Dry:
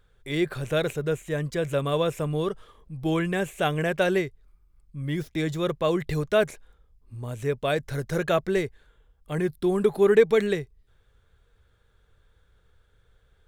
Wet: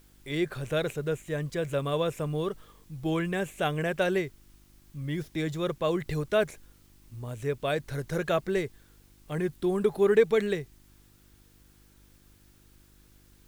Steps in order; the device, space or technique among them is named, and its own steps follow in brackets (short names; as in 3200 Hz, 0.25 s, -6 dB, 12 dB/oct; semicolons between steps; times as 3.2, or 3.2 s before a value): video cassette with head-switching buzz (buzz 50 Hz, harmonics 7, -57 dBFS -4 dB/oct; white noise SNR 34 dB); gain -3.5 dB